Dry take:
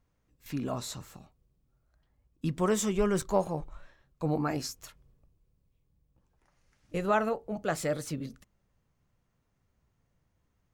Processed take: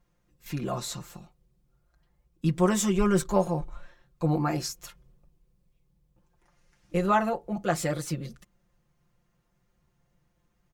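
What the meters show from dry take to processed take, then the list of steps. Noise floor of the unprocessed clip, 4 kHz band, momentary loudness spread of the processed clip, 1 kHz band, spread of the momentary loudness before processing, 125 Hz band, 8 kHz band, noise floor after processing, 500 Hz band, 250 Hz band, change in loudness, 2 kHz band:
-75 dBFS, +3.5 dB, 14 LU, +4.5 dB, 13 LU, +6.0 dB, +4.0 dB, -72 dBFS, +2.0 dB, +5.0 dB, +4.0 dB, +2.5 dB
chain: comb 5.7 ms, depth 84%; gain +1.5 dB

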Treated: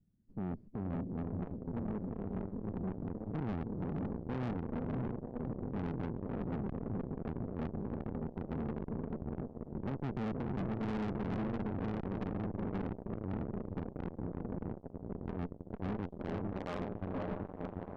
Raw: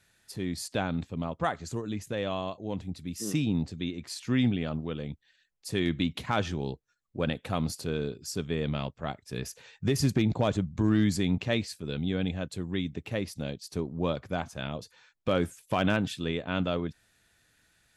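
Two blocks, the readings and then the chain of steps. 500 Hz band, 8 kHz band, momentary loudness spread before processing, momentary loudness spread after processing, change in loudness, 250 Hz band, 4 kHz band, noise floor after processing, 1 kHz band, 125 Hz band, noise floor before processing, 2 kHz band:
-9.0 dB, under -30 dB, 11 LU, 5 LU, -8.5 dB, -7.0 dB, under -20 dB, -53 dBFS, -9.0 dB, -7.5 dB, -70 dBFS, -15.5 dB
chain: bin magnitudes rounded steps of 15 dB; half-wave rectifier; low-pass sweep 220 Hz -> 1600 Hz, 15.91–17.53; on a send: diffused feedback echo 0.547 s, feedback 76%, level -6 dB; on the sum: tube stage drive 40 dB, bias 0.65; gain +6 dB

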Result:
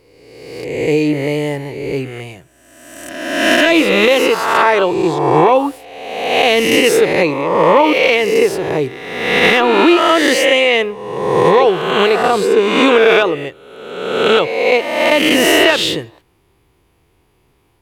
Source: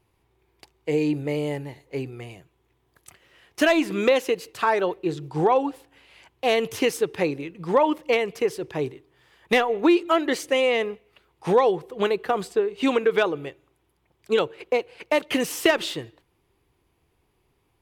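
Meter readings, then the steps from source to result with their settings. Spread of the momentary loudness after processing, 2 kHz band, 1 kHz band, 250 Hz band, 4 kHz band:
13 LU, +14.0 dB, +11.5 dB, +10.0 dB, +15.0 dB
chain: spectral swells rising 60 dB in 1.34 s; dynamic EQ 2800 Hz, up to +4 dB, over -32 dBFS, Q 1.2; limiter -9 dBFS, peak gain reduction 7 dB; gain +8 dB

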